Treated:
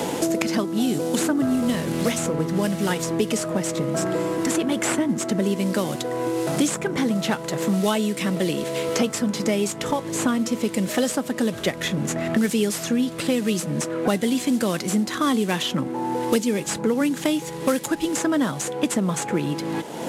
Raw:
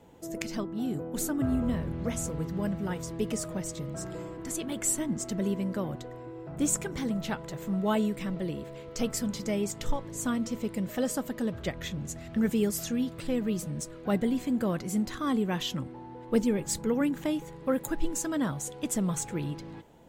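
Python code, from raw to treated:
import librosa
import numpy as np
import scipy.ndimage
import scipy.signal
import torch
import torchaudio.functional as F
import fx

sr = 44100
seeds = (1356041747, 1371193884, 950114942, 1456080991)

y = fx.cvsd(x, sr, bps=64000)
y = scipy.signal.sosfilt(scipy.signal.butter(2, 190.0, 'highpass', fs=sr, output='sos'), y)
y = fx.band_squash(y, sr, depth_pct=100)
y = F.gain(torch.from_numpy(y), 8.5).numpy()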